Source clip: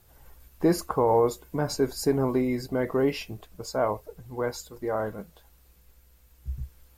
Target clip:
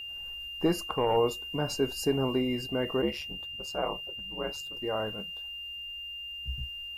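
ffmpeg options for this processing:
ffmpeg -i in.wav -filter_complex "[0:a]asettb=1/sr,asplit=3[link_01][link_02][link_03];[link_01]atrim=end=0.664[link_04];[link_02]atrim=start=0.66:end=1.17,asetpts=PTS-STARTPTS,afade=type=in:duration=0.004:curve=qsin,afade=type=out:start_time=0.506:duration=0.004:curve=qsin,aeval=exprs='0.299*(cos(1*acos(clip(val(0)/0.299,-1,1)))-cos(1*PI/2))+0.0211*(cos(3*acos(clip(val(0)/0.299,-1,1)))-cos(3*PI/2))+0.0133*(cos(4*acos(clip(val(0)/0.299,-1,1)))-cos(4*PI/2))':channel_layout=same[link_05];[link_03]atrim=start=1.166[link_06];[link_04][link_05]acrossfade=duration=0.004:curve1=hsin:curve2=qsin[link_07];[link_07][link_06]acrossfade=duration=0.004:curve1=qsin:curve2=hsin,asplit=3[link_08][link_09][link_10];[link_08]afade=type=out:start_time=3.01:duration=0.02[link_11];[link_09]aeval=exprs='val(0)*sin(2*PI*72*n/s)':channel_layout=same,afade=type=in:start_time=3.01:duration=0.02,afade=type=out:start_time=4.75:duration=0.02[link_12];[link_10]afade=type=in:start_time=4.75:duration=0.02[link_13];[link_11][link_12][link_13]amix=inputs=3:normalize=0,aeval=exprs='val(0)+0.02*sin(2*PI*2800*n/s)':channel_layout=same,volume=-3.5dB" out.wav

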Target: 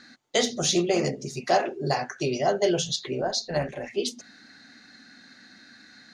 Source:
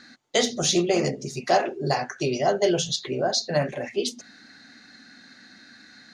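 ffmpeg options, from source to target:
ffmpeg -i in.wav -filter_complex "[0:a]asettb=1/sr,asplit=3[link_01][link_02][link_03];[link_01]atrim=end=3.214[link_04];[link_02]atrim=start=3.21:end=3.9,asetpts=PTS-STARTPTS,afade=type=in:duration=0.004:curve=qsin,afade=type=out:start_time=0.686:duration=0.004:curve=qsin,tremolo=f=210:d=0.462[link_05];[link_03]atrim=start=3.896[link_06];[link_04][link_05]acrossfade=duration=0.004:curve1=hsin:curve2=qsin[link_07];[link_07][link_06]acrossfade=duration=0.004:curve1=qsin:curve2=hsin,volume=-1.5dB" out.wav

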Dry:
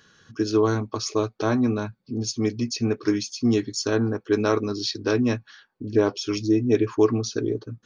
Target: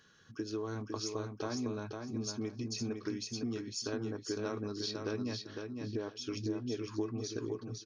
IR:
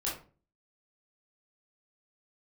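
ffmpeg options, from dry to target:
-filter_complex "[0:a]acompressor=threshold=-27dB:ratio=6,asplit=2[link_01][link_02];[link_02]aecho=0:1:506|1012|1518:0.562|0.112|0.0225[link_03];[link_01][link_03]amix=inputs=2:normalize=0,volume=-8dB"

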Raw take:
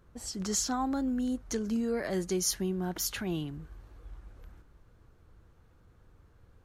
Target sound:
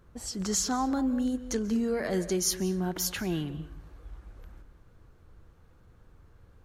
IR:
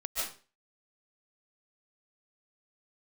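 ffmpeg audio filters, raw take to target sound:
-filter_complex "[0:a]asplit=2[link_01][link_02];[link_02]bass=frequency=250:gain=4,treble=frequency=4000:gain=-7[link_03];[1:a]atrim=start_sample=2205,asetrate=37485,aresample=44100[link_04];[link_03][link_04]afir=irnorm=-1:irlink=0,volume=-17.5dB[link_05];[link_01][link_05]amix=inputs=2:normalize=0,volume=1.5dB"

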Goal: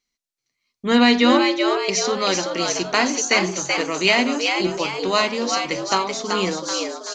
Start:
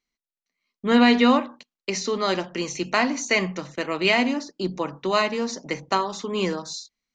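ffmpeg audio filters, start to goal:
ffmpeg -i in.wav -filter_complex "[0:a]equalizer=frequency=5900:width_type=o:width=1.6:gain=7,asplit=7[link_01][link_02][link_03][link_04][link_05][link_06][link_07];[link_02]adelay=382,afreqshift=100,volume=-4.5dB[link_08];[link_03]adelay=764,afreqshift=200,volume=-11.1dB[link_09];[link_04]adelay=1146,afreqshift=300,volume=-17.6dB[link_10];[link_05]adelay=1528,afreqshift=400,volume=-24.2dB[link_11];[link_06]adelay=1910,afreqshift=500,volume=-30.7dB[link_12];[link_07]adelay=2292,afreqshift=600,volume=-37.3dB[link_13];[link_01][link_08][link_09][link_10][link_11][link_12][link_13]amix=inputs=7:normalize=0,volume=1dB" out.wav

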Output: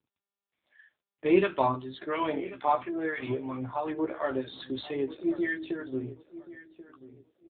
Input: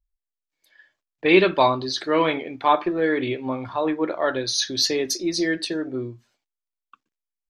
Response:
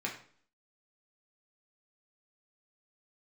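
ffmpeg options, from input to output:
-filter_complex "[0:a]asettb=1/sr,asplit=3[link_01][link_02][link_03];[link_01]atrim=end=2.494[link_04];[link_02]atrim=start=2.49:end=3.3,asetpts=PTS-STARTPTS,afade=type=in:duration=0.004:curve=qsin,afade=type=out:start_time=0.806:duration=0.004:curve=qsin,lowshelf=frequency=420:gain=-6[link_05];[link_03]atrim=start=3.296[link_06];[link_04][link_05]acrossfade=duration=0.004:curve1=hsin:curve2=qsin[link_07];[link_07][link_06]acrossfade=duration=0.004:curve1=qsin:curve2=hsin,asplit=3[link_08][link_09][link_10];[link_08]afade=type=out:start_time=5.05:duration=0.02[link_11];[link_09]bandreject=frequency=63.64:width_type=h:width=4,bandreject=frequency=127.28:width_type=h:width=4,bandreject=frequency=190.92:width_type=h:width=4,bandreject=frequency=254.56:width_type=h:width=4,bandreject=frequency=318.2:width_type=h:width=4,afade=type=in:start_time=5.05:duration=0.02,afade=type=out:start_time=6.06:duration=0.02[link_12];[link_10]afade=type=in:start_time=6.06:duration=0.02[link_13];[link_11][link_12][link_13]amix=inputs=3:normalize=0,acrossover=split=1100[link_14][link_15];[link_14]aeval=exprs='val(0)*(1-0.7/2+0.7/2*cos(2*PI*3*n/s))':channel_layout=same[link_16];[link_15]aeval=exprs='val(0)*(1-0.7/2-0.7/2*cos(2*PI*3*n/s))':channel_layout=same[link_17];[link_16][link_17]amix=inputs=2:normalize=0,bandreject=frequency=490:width=14,asplit=2[link_18][link_19];[link_19]adelay=15,volume=-5dB[link_20];[link_18][link_20]amix=inputs=2:normalize=0,asplit=2[link_21][link_22];[link_22]acompressor=threshold=-32dB:ratio=6,volume=-1dB[link_23];[link_21][link_23]amix=inputs=2:normalize=0,asplit=2[link_24][link_25];[link_25]adelay=1085,lowpass=frequency=2300:poles=1,volume=-15.5dB,asplit=2[link_26][link_27];[link_27]adelay=1085,lowpass=frequency=2300:poles=1,volume=0.26,asplit=2[link_28][link_29];[link_29]adelay=1085,lowpass=frequency=2300:poles=1,volume=0.26[link_30];[link_24][link_26][link_28][link_30]amix=inputs=4:normalize=0,aeval=exprs='0.668*(cos(1*acos(clip(val(0)/0.668,-1,1)))-cos(1*PI/2))+0.00531*(cos(7*acos(clip(val(0)/0.668,-1,1)))-cos(7*PI/2))+0.0106*(cos(8*acos(clip(val(0)/0.668,-1,1)))-cos(8*PI/2))':channel_layout=same,volume=-6dB" -ar 8000 -c:a libopencore_amrnb -b:a 7400

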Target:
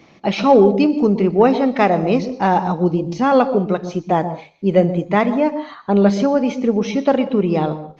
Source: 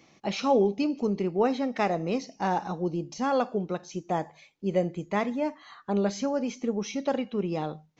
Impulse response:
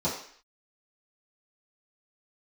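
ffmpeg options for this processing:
-filter_complex "[0:a]lowpass=4400,acontrast=59,asplit=2[link_01][link_02];[1:a]atrim=start_sample=2205,afade=type=out:start_time=0.19:duration=0.01,atrim=end_sample=8820,adelay=119[link_03];[link_02][link_03]afir=irnorm=-1:irlink=0,volume=-23.5dB[link_04];[link_01][link_04]amix=inputs=2:normalize=0,volume=5.5dB" -ar 48000 -c:a libopus -b:a 24k

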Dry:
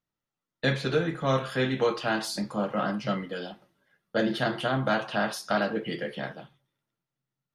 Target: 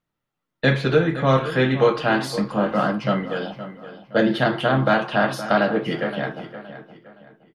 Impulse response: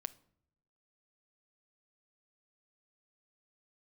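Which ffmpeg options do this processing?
-filter_complex "[0:a]asplit=2[link_01][link_02];[link_02]adelay=518,lowpass=frequency=4200:poles=1,volume=-13dB,asplit=2[link_03][link_04];[link_04]adelay=518,lowpass=frequency=4200:poles=1,volume=0.35,asplit=2[link_05][link_06];[link_06]adelay=518,lowpass=frequency=4200:poles=1,volume=0.35[link_07];[link_01][link_03][link_05][link_07]amix=inputs=4:normalize=0,asplit=2[link_08][link_09];[1:a]atrim=start_sample=2205,lowpass=3900[link_10];[link_09][link_10]afir=irnorm=-1:irlink=0,volume=4dB[link_11];[link_08][link_11]amix=inputs=2:normalize=0,volume=1dB"

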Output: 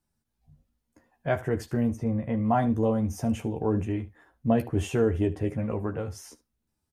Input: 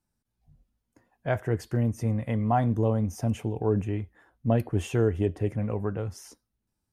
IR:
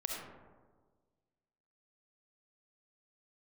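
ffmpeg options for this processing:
-filter_complex "[0:a]asplit=3[link_01][link_02][link_03];[link_01]afade=type=out:start_time=1.95:duration=0.02[link_04];[link_02]lowpass=frequency=1400:poles=1,afade=type=in:start_time=1.95:duration=0.02,afade=type=out:start_time=2.43:duration=0.02[link_05];[link_03]afade=type=in:start_time=2.43:duration=0.02[link_06];[link_04][link_05][link_06]amix=inputs=3:normalize=0,aecho=1:1:13|75:0.562|0.133"

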